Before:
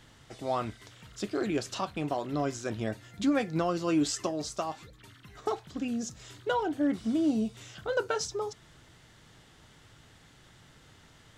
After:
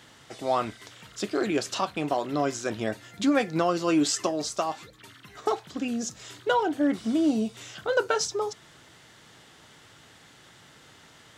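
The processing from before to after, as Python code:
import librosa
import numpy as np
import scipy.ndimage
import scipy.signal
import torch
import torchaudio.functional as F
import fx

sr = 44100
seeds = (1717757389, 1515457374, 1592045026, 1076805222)

y = fx.highpass(x, sr, hz=270.0, slope=6)
y = y * 10.0 ** (6.0 / 20.0)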